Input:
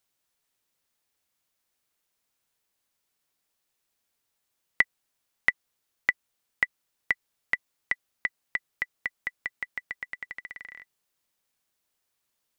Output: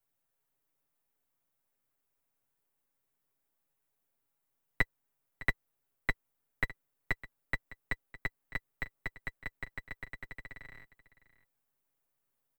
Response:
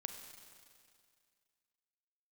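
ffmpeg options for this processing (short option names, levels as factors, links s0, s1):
-filter_complex "[0:a]aeval=exprs='if(lt(val(0),0),0.447*val(0),val(0))':c=same,equalizer=f=4700:t=o:w=2.3:g=-12.5,aecho=1:1:7.3:0.97,aecho=1:1:608:0.133,acrossover=split=130|960|3200[s0][s1][s2][s3];[s0]acrusher=bits=4:mode=log:mix=0:aa=0.000001[s4];[s4][s1][s2][s3]amix=inputs=4:normalize=0,volume=0.841"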